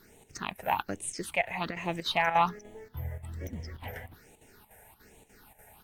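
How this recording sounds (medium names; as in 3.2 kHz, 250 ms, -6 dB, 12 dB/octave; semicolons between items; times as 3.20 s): a quantiser's noise floor 10-bit, dither none; phasing stages 6, 1.2 Hz, lowest notch 300–1400 Hz; chopped level 3.4 Hz, depth 65%, duty 80%; AAC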